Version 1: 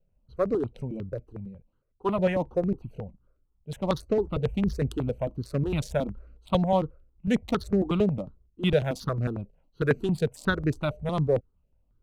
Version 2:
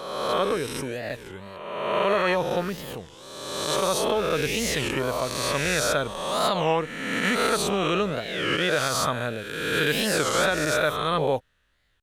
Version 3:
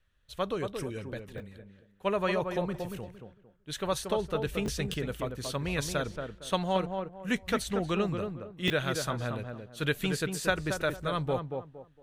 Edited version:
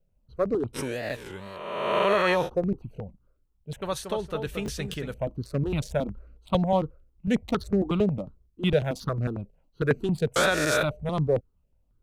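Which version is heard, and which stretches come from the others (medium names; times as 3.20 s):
1
0.76–2.47 s: from 2, crossfade 0.06 s
3.82–5.14 s: from 3
10.36–10.83 s: from 2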